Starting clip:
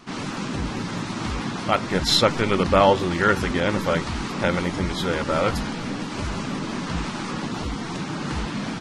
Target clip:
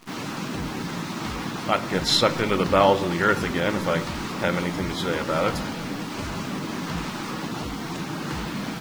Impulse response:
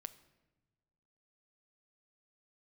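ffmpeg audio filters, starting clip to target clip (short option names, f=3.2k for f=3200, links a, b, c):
-filter_complex "[0:a]lowshelf=f=64:g=-11,acrusher=bits=8:dc=4:mix=0:aa=0.000001[a];[1:a]atrim=start_sample=2205,asetrate=48510,aresample=44100[b];[a][b]afir=irnorm=-1:irlink=0,volume=4.5dB"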